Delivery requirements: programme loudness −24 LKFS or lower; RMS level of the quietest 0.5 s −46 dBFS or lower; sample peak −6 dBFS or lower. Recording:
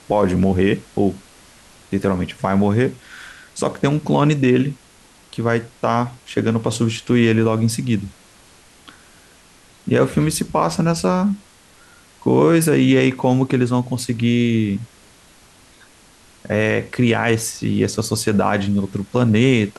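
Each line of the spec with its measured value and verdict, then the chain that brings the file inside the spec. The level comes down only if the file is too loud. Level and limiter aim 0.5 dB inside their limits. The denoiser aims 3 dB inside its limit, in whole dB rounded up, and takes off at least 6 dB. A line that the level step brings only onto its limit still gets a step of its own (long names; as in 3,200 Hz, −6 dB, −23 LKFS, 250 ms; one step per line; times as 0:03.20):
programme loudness −18.5 LKFS: out of spec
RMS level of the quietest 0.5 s −49 dBFS: in spec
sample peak −5.0 dBFS: out of spec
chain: level −6 dB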